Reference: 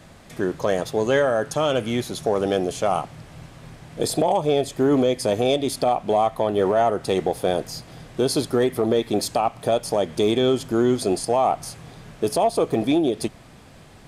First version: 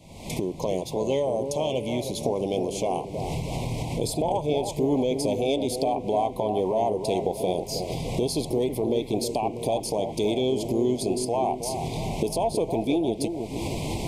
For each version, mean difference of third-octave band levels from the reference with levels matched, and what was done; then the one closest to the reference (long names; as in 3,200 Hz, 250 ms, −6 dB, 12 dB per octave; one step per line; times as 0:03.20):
7.0 dB: camcorder AGC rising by 61 dB per second
elliptic band-stop filter 1,000–2,200 Hz, stop band 50 dB
on a send: bucket-brigade delay 320 ms, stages 2,048, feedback 57%, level −7 dB
on the sum: level −5 dB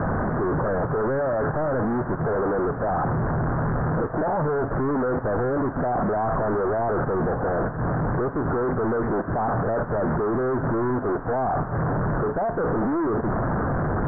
13.5 dB: sign of each sample alone
Butterworth low-pass 1,600 Hz 72 dB per octave
highs frequency-modulated by the lows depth 0.11 ms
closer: first